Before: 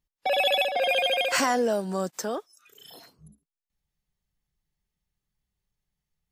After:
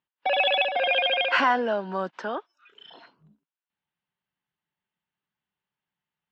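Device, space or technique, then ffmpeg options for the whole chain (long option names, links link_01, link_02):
kitchen radio: -af "highpass=220,equalizer=frequency=460:width_type=q:width=4:gain=-4,equalizer=frequency=960:width_type=q:width=4:gain=7,equalizer=frequency=1500:width_type=q:width=4:gain=7,equalizer=frequency=2900:width_type=q:width=4:gain=5,lowpass=frequency=3500:width=0.5412,lowpass=frequency=3500:width=1.3066"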